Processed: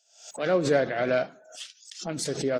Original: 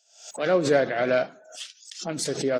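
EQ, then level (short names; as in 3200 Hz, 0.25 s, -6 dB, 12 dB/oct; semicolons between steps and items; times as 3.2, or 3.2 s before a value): low shelf 83 Hz +11 dB; -2.5 dB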